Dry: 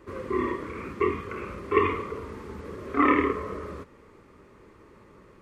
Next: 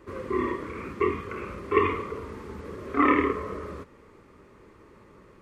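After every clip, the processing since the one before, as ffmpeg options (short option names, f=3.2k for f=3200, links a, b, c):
-af anull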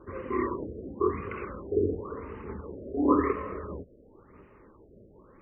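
-af "aphaser=in_gain=1:out_gain=1:delay=3.9:decay=0.32:speed=1.6:type=sinusoidal,afftfilt=real='re*lt(b*sr/1024,670*pow(3100/670,0.5+0.5*sin(2*PI*0.95*pts/sr)))':imag='im*lt(b*sr/1024,670*pow(3100/670,0.5+0.5*sin(2*PI*0.95*pts/sr)))':win_size=1024:overlap=0.75,volume=-2dB"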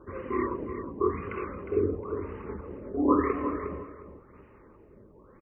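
-af "aecho=1:1:359|718:0.335|0.0569"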